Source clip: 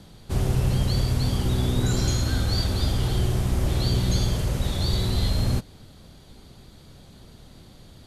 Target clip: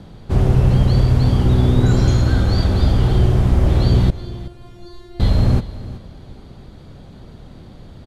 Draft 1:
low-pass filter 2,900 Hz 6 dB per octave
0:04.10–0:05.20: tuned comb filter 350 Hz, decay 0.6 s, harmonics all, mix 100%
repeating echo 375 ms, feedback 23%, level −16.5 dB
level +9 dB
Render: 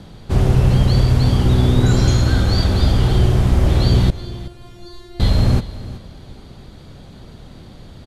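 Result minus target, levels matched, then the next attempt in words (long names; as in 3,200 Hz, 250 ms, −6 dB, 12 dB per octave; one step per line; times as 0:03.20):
4,000 Hz band +4.5 dB
low-pass filter 1,400 Hz 6 dB per octave
0:04.10–0:05.20: tuned comb filter 350 Hz, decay 0.6 s, harmonics all, mix 100%
repeating echo 375 ms, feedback 23%, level −16.5 dB
level +9 dB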